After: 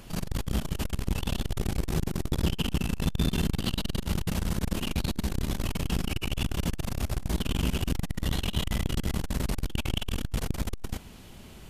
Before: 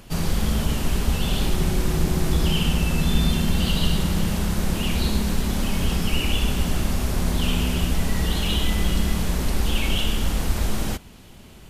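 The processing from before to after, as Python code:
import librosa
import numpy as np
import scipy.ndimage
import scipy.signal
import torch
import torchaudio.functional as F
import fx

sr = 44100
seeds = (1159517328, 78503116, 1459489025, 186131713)

y = fx.transformer_sat(x, sr, knee_hz=270.0)
y = y * librosa.db_to_amplitude(-1.5)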